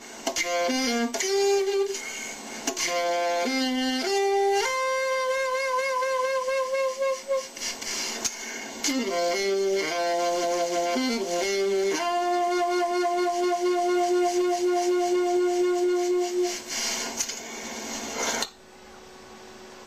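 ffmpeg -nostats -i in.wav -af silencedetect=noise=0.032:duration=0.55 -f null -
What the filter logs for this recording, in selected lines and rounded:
silence_start: 18.45
silence_end: 19.86 | silence_duration: 1.41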